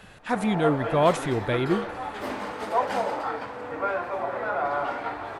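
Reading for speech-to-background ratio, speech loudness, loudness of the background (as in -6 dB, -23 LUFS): 4.5 dB, -25.5 LUFS, -30.0 LUFS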